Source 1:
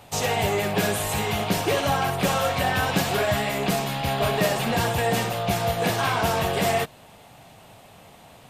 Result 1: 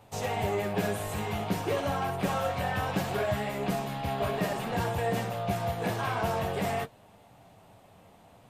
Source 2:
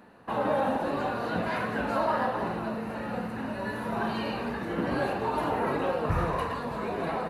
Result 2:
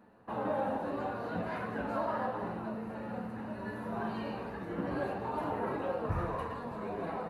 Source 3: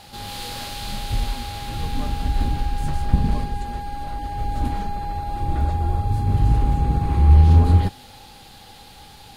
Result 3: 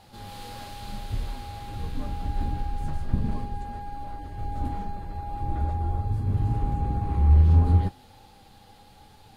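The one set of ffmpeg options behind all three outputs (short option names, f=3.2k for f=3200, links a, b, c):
-filter_complex "[0:a]flanger=delay=9.1:depth=1.7:regen=-45:speed=0.32:shape=triangular,asplit=2[a][b];[b]adynamicsmooth=sensitivity=1:basefreq=2k,volume=0dB[c];[a][c]amix=inputs=2:normalize=0,volume=-8dB"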